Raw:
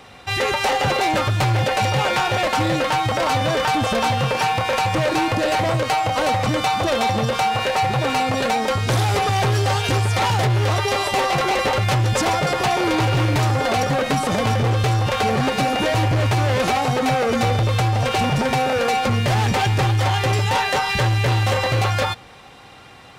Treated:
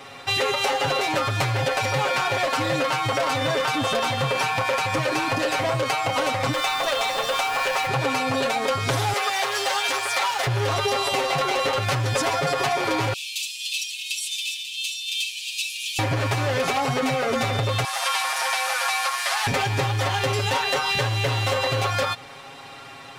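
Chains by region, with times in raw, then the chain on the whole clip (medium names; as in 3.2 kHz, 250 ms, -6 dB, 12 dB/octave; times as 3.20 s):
6.52–7.86 s: high-pass 570 Hz + added noise pink -39 dBFS
9.13–10.47 s: high-pass 670 Hz + word length cut 8-bit, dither none
13.13–15.99 s: rippled Chebyshev high-pass 2.5 kHz, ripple 3 dB + comb 5 ms, depth 41%
17.84–19.47 s: one-bit delta coder 64 kbps, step -23 dBFS + high-pass 860 Hz 24 dB/octave + comb 7.5 ms, depth 33%
whole clip: bass shelf 200 Hz -9 dB; comb 7.3 ms, depth 90%; compression, threshold -21 dBFS; trim +1 dB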